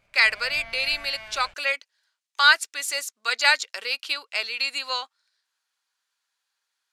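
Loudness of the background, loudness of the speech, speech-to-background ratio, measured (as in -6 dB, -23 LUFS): -41.0 LUFS, -23.0 LUFS, 18.0 dB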